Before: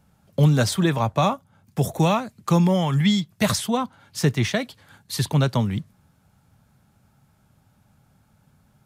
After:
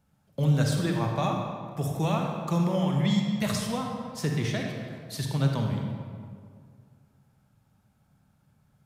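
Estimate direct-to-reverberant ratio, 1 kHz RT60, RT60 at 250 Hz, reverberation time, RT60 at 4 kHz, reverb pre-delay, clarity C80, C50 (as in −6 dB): 1.0 dB, 2.0 s, 2.4 s, 2.1 s, 1.3 s, 36 ms, 3.5 dB, 2.0 dB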